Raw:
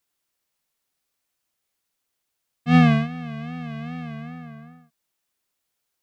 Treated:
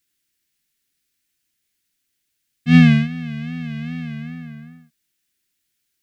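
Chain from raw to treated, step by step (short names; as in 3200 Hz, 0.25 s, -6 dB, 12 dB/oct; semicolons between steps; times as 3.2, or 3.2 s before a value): band shelf 760 Hz -14 dB; gain +5 dB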